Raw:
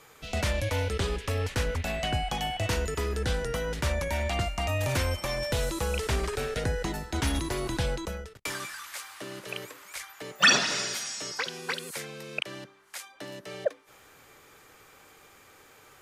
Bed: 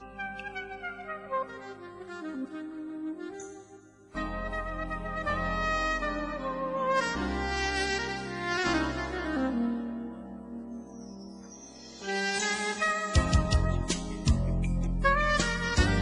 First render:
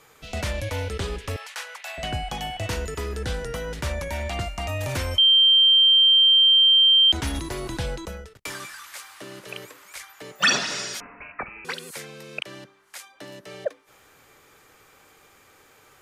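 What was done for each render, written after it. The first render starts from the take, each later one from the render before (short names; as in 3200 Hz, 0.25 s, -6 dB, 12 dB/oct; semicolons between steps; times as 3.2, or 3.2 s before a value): 1.36–1.98 HPF 780 Hz 24 dB/oct; 5.18–7.12 bleep 3150 Hz -12.5 dBFS; 11–11.65 inverted band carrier 2800 Hz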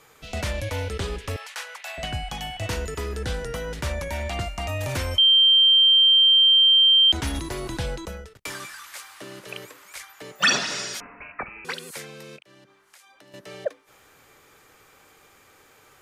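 2.05–2.62 bell 440 Hz -6.5 dB 1.6 oct; 12.36–13.34 compressor, threshold -49 dBFS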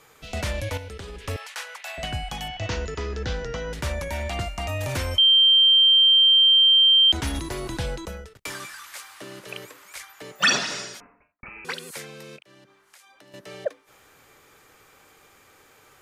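0.77–1.25 compressor, threshold -34 dBFS; 2.48–3.73 steep low-pass 6700 Hz 48 dB/oct; 10.61–11.43 studio fade out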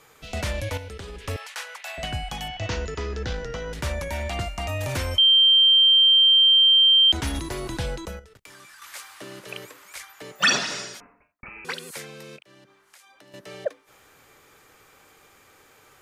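3.26–3.76 half-wave gain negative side -3 dB; 8.19–8.82 compressor 4:1, threshold -46 dBFS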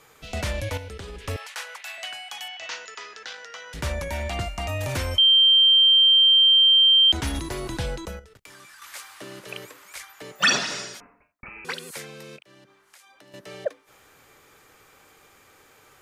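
1.84–3.74 HPF 1100 Hz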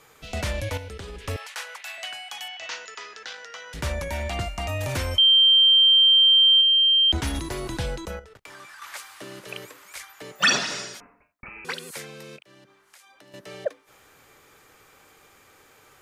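6.61–7.18 tilt -1.5 dB/oct; 8.1–8.97 EQ curve 230 Hz 0 dB, 770 Hz +7 dB, 11000 Hz -3 dB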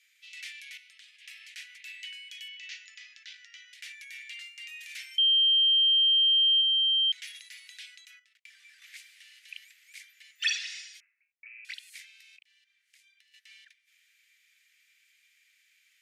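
steep high-pass 2000 Hz 48 dB/oct; tilt -4 dB/oct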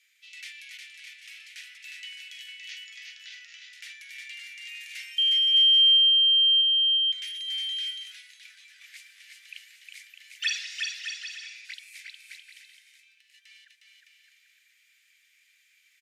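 bouncing-ball echo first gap 0.36 s, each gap 0.7×, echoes 5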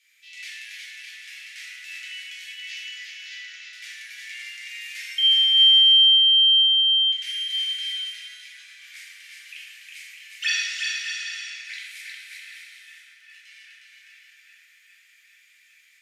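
dark delay 0.403 s, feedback 80%, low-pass 1800 Hz, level -13.5 dB; plate-style reverb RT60 1.9 s, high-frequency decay 0.55×, DRR -6 dB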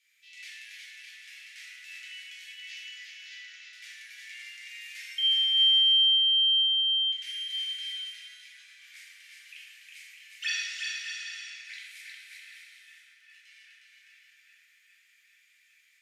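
gain -7 dB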